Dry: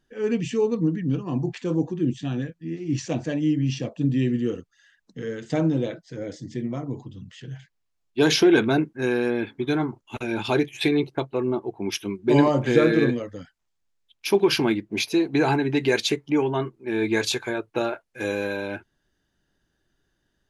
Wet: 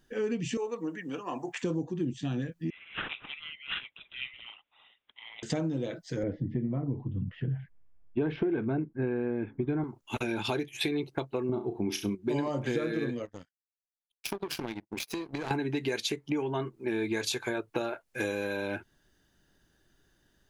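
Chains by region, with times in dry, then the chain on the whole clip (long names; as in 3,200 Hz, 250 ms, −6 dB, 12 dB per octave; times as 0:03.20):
0:00.57–0:01.63: high-pass filter 670 Hz + parametric band 4,300 Hz −13 dB 0.66 octaves
0:02.70–0:05.43: Chebyshev high-pass filter 2,000 Hz, order 8 + bad sample-rate conversion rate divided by 6×, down none, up filtered
0:06.23–0:09.84: low-pass filter 2,600 Hz 24 dB per octave + spectral tilt −3 dB per octave
0:11.49–0:12.15: low-shelf EQ 270 Hz +11.5 dB + flutter between parallel walls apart 5.8 metres, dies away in 0.25 s
0:13.25–0:15.51: downward compressor 5 to 1, threshold −29 dBFS + power curve on the samples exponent 2
whole clip: high-shelf EQ 9,600 Hz +7.5 dB; downward compressor 6 to 1, threshold −33 dBFS; level +4 dB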